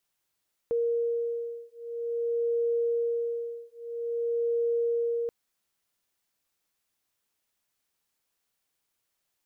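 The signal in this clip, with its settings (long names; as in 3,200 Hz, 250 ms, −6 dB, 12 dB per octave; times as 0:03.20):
two tones that beat 468 Hz, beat 0.5 Hz, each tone −29.5 dBFS 4.58 s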